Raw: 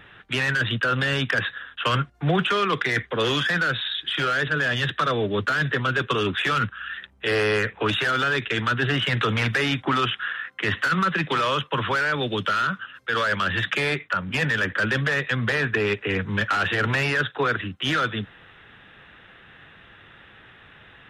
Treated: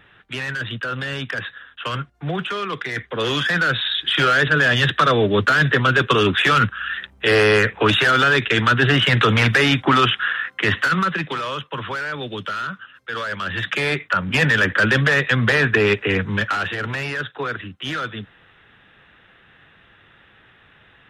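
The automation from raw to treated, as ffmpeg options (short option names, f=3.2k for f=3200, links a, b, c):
-af "volume=17dB,afade=t=in:st=2.91:d=1.23:silence=0.298538,afade=t=out:st=10.46:d=0.94:silence=0.298538,afade=t=in:st=13.38:d=0.99:silence=0.316228,afade=t=out:st=15.95:d=0.82:silence=0.334965"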